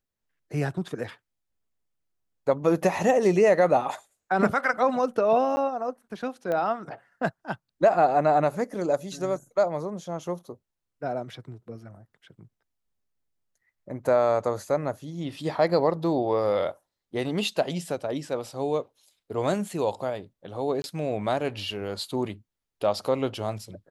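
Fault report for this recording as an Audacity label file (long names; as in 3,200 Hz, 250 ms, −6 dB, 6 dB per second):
5.560000	5.570000	drop-out 10 ms
6.520000	6.520000	click −18 dBFS
20.820000	20.840000	drop-out 21 ms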